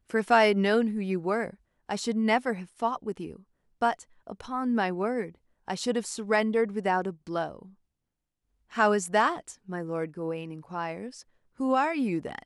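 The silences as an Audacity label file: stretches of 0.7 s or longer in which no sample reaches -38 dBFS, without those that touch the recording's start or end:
7.620000	8.730000	silence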